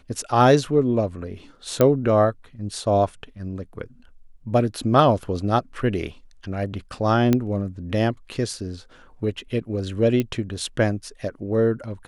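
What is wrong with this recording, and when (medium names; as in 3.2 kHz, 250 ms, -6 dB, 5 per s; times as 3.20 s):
1.81 s: pop -5 dBFS
7.33 s: pop -7 dBFS
10.20 s: pop -11 dBFS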